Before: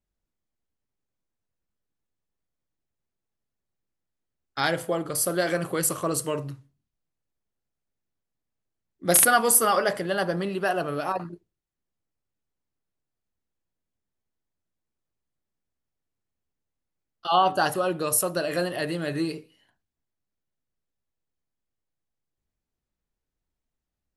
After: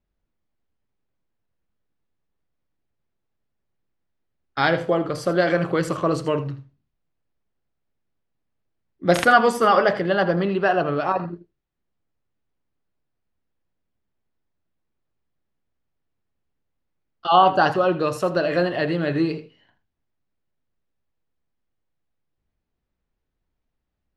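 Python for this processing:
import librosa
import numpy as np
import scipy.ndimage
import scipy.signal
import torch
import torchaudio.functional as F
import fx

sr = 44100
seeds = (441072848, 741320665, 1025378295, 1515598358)

p1 = fx.air_absorb(x, sr, metres=200.0)
p2 = p1 + fx.echo_single(p1, sr, ms=81, db=-14.5, dry=0)
y = p2 * 10.0 ** (6.5 / 20.0)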